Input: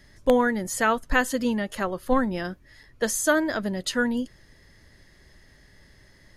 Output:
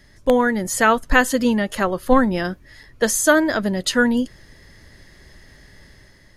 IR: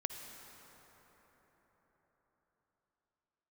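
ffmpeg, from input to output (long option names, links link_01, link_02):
-af "dynaudnorm=framelen=150:gausssize=7:maxgain=5dB,volume=2.5dB"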